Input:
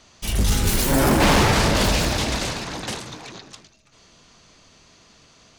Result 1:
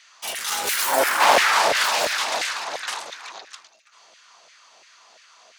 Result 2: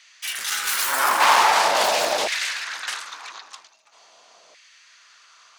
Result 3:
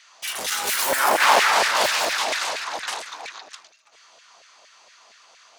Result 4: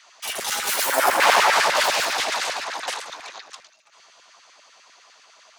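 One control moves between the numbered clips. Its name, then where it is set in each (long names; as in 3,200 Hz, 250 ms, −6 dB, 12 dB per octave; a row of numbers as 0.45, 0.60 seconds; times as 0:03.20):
auto-filter high-pass, speed: 2.9, 0.44, 4.3, 10 Hertz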